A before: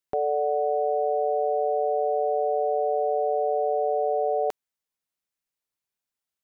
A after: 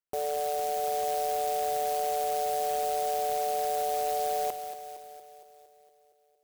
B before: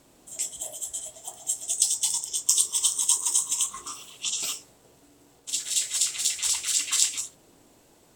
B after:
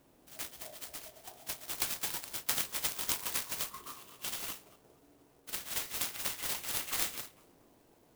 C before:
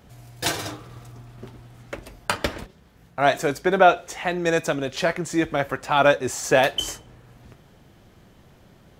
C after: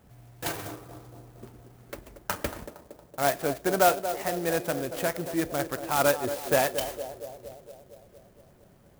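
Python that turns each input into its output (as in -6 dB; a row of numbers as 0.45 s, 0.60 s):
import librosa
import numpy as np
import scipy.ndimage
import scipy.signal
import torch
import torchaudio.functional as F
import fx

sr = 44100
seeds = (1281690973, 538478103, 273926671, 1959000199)

p1 = fx.high_shelf(x, sr, hz=7700.0, db=-9.0)
p2 = p1 + fx.echo_banded(p1, sr, ms=231, feedback_pct=68, hz=470.0, wet_db=-9, dry=0)
p3 = fx.clock_jitter(p2, sr, seeds[0], jitter_ms=0.066)
y = p3 * librosa.db_to_amplitude(-6.0)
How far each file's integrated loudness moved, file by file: -4.5 LU, -11.0 LU, -5.5 LU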